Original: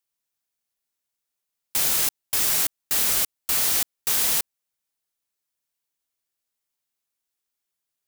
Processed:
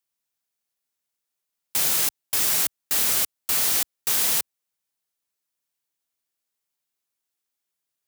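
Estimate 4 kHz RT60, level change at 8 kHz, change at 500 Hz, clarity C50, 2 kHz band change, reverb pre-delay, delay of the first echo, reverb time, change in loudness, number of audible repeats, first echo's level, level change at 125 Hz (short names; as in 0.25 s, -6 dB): none, 0.0 dB, 0.0 dB, none, 0.0 dB, none, none, none, 0.0 dB, none, none, -1.0 dB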